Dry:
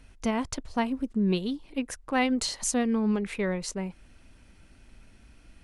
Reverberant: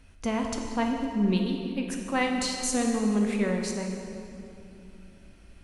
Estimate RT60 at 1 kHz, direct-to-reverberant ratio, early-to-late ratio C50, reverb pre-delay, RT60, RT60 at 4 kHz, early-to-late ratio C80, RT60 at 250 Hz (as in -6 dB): 2.5 s, 1.5 dB, 3.0 dB, 8 ms, 2.7 s, 2.0 s, 4.5 dB, 3.5 s